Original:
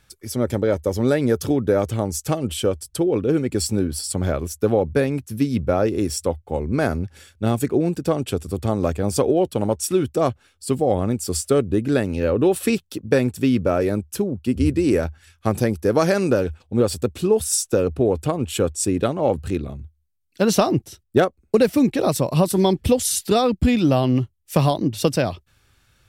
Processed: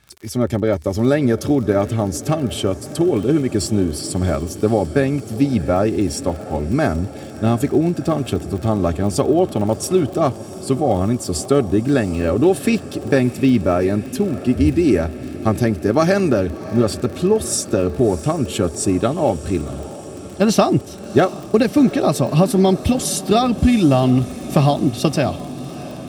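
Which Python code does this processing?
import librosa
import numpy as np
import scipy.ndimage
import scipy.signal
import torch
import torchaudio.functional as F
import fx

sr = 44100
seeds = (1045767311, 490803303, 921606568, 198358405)

y = fx.high_shelf(x, sr, hz=11000.0, db=-10.0)
y = fx.notch_comb(y, sr, f0_hz=490.0)
y = fx.dmg_crackle(y, sr, seeds[0], per_s=50.0, level_db=-32.0)
y = fx.echo_diffused(y, sr, ms=693, feedback_pct=71, wet_db=-16.0)
y = y * librosa.db_to_amplitude(4.0)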